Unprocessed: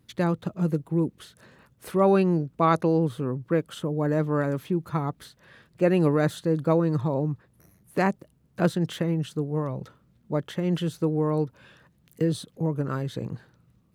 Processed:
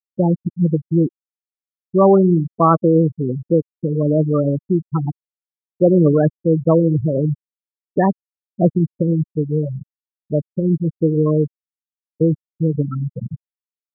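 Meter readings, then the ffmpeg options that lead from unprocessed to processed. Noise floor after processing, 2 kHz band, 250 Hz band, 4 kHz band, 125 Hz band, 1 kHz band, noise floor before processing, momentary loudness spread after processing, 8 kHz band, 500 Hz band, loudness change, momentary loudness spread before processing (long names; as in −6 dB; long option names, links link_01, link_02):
below −85 dBFS, −4.5 dB, +8.5 dB, below −40 dB, +8.5 dB, +6.0 dB, −63 dBFS, 11 LU, below −30 dB, +8.0 dB, +8.0 dB, 11 LU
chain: -filter_complex "[0:a]asplit=2[link_01][link_02];[link_02]adelay=105,volume=-17dB,highshelf=frequency=4000:gain=-2.36[link_03];[link_01][link_03]amix=inputs=2:normalize=0,acontrast=64,afftfilt=real='re*gte(hypot(re,im),0.398)':imag='im*gte(hypot(re,im),0.398)':win_size=1024:overlap=0.75,volume=2.5dB"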